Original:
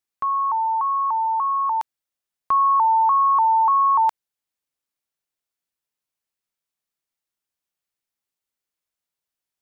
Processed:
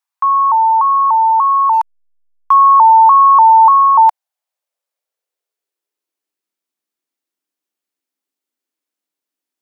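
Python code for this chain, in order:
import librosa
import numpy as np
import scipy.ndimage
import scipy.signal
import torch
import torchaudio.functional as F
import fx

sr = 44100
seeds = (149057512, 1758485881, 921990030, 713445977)

y = fx.filter_sweep_highpass(x, sr, from_hz=940.0, to_hz=280.0, start_s=3.6, end_s=6.55, q=3.2)
y = fx.backlash(y, sr, play_db=-37.0, at=(1.73, 2.54))
y = F.gain(torch.from_numpy(y), 1.5).numpy()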